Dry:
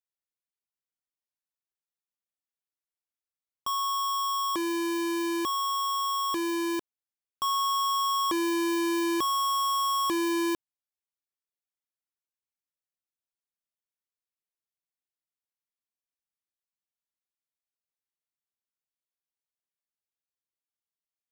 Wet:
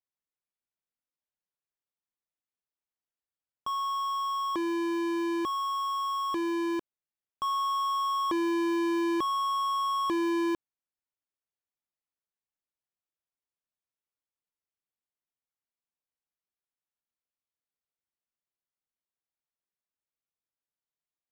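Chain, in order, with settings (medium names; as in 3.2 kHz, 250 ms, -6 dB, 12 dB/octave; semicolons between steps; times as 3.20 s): low-pass 1.8 kHz 6 dB/octave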